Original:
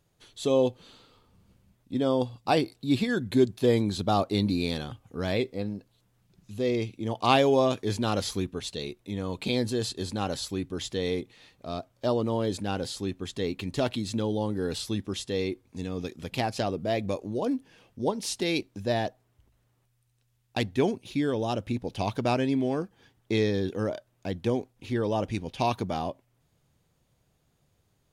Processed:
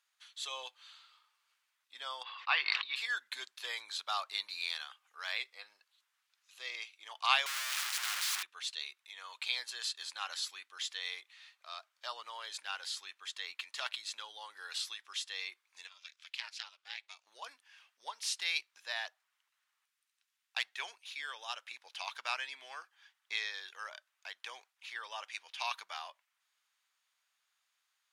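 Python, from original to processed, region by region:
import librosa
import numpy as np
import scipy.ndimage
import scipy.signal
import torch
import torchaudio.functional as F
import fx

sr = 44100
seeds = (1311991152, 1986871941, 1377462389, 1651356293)

y = fx.chain(x, sr, fx.cabinet(low_hz=320.0, low_slope=12, high_hz=3800.0, hz=(670.0, 1100.0, 1900.0, 2700.0), db=(-5, 7, 6, 4)),
    fx.sustainer(db_per_s=36.0), at=(2.23, 2.96))
y = fx.chain(y, sr, fx.clip_1bit(),
    fx.highpass(hz=97.0, slope=12),
    fx.spectral_comp(ratio=2.0), at=(7.46, 8.43))
y = fx.chain(y, sr, fx.bandpass_q(hz=3900.0, q=0.78),
    fx.ring_mod(carrier_hz=150.0), at=(15.87, 17.27))
y = scipy.signal.sosfilt(scipy.signal.butter(4, 1200.0, 'highpass', fs=sr, output='sos'), y)
y = fx.high_shelf(y, sr, hz=8400.0, db=-10.0)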